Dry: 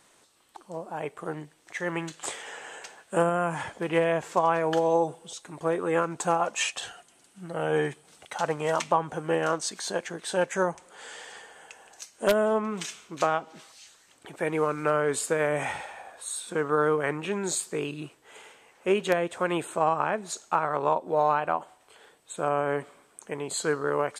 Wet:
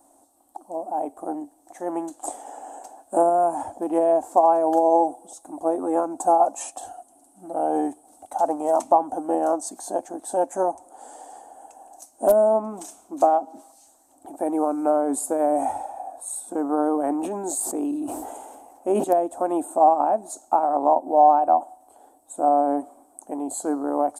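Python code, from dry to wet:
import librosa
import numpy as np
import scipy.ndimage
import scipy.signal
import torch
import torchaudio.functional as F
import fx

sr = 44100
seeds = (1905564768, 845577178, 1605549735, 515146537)

y = fx.curve_eq(x, sr, hz=(100.0, 150.0, 280.0, 440.0, 740.0, 1100.0, 2000.0, 3000.0, 5000.0, 9900.0), db=(0, -21, 13, -5, 14, -5, -21, -20, -11, 7))
y = fx.sustainer(y, sr, db_per_s=31.0, at=(16.85, 19.03), fade=0.02)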